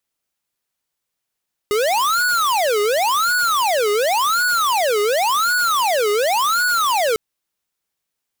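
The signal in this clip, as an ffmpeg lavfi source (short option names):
-f lavfi -i "aevalsrc='0.133*(2*lt(mod((940.5*t-529.5/(2*PI*0.91)*sin(2*PI*0.91*t)),1),0.5)-1)':d=5.45:s=44100"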